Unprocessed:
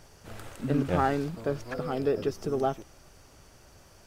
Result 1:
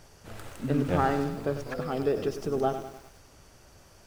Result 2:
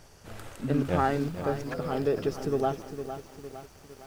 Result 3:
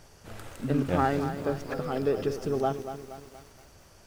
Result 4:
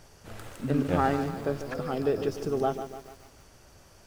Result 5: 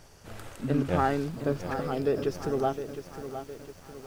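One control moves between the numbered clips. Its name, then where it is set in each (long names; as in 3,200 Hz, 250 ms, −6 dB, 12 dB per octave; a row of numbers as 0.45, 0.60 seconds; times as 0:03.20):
feedback echo at a low word length, delay time: 99, 457, 236, 146, 711 milliseconds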